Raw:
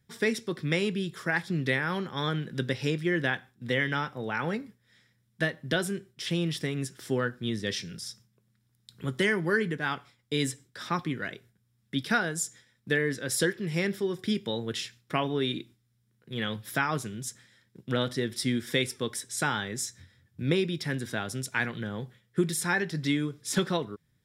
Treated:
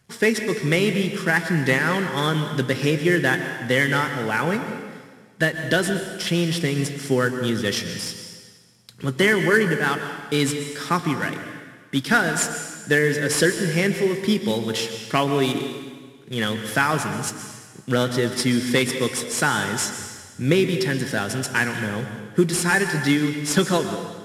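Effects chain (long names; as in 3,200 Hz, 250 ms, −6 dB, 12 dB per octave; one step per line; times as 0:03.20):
variable-slope delta modulation 64 kbit/s
low-shelf EQ 84 Hz −6 dB
notch filter 3,700 Hz, Q 13
dense smooth reverb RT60 1.5 s, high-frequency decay 0.95×, pre-delay 110 ms, DRR 7 dB
level +8.5 dB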